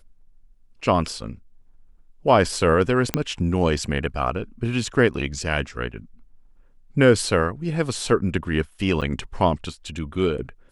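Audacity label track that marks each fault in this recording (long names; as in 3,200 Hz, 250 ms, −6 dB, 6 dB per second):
3.140000	3.140000	click −5 dBFS
9.010000	9.020000	drop-out 7.4 ms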